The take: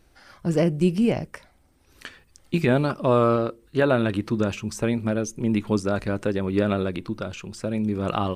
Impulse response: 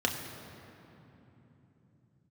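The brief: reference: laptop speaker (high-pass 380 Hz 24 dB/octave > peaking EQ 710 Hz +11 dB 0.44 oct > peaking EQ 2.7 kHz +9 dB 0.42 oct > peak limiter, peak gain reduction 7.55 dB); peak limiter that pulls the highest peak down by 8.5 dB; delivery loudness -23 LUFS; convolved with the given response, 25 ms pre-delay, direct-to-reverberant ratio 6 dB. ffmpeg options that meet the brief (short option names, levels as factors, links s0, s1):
-filter_complex "[0:a]alimiter=limit=0.158:level=0:latency=1,asplit=2[s0][s1];[1:a]atrim=start_sample=2205,adelay=25[s2];[s1][s2]afir=irnorm=-1:irlink=0,volume=0.178[s3];[s0][s3]amix=inputs=2:normalize=0,highpass=f=380:w=0.5412,highpass=f=380:w=1.3066,equalizer=f=710:t=o:w=0.44:g=11,equalizer=f=2700:t=o:w=0.42:g=9,volume=2.37,alimiter=limit=0.266:level=0:latency=1"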